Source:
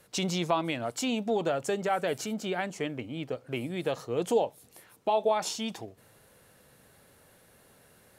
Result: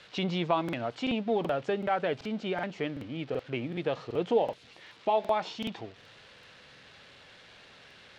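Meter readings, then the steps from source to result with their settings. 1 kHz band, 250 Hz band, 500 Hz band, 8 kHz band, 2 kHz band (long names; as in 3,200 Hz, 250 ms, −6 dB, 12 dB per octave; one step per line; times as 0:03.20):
0.0 dB, 0.0 dB, −0.5 dB, below −15 dB, −0.5 dB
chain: spike at every zero crossing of −32 dBFS
low-pass filter 3,600 Hz 24 dB per octave
regular buffer underruns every 0.38 s, samples 2,048, repeat, from 0:00.64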